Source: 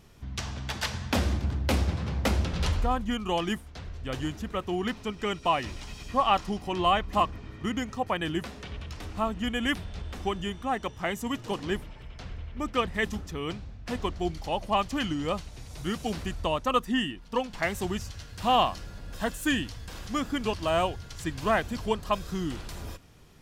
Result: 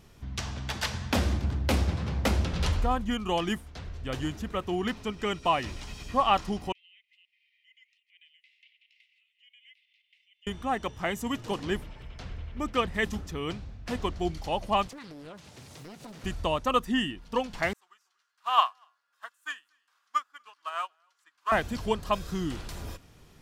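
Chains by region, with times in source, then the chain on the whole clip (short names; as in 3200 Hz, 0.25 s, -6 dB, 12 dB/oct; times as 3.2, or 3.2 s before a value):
6.72–10.47 compressor 4:1, threshold -38 dBFS + rippled Chebyshev high-pass 2000 Hz, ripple 6 dB + air absorption 440 m
14.87–16.24 HPF 110 Hz 24 dB/oct + compressor, threshold -42 dBFS + Doppler distortion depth 0.81 ms
17.73–21.52 resonant high-pass 1200 Hz, resonance Q 3.4 + echo 0.24 s -15.5 dB + upward expander 2.5:1, over -36 dBFS
whole clip: dry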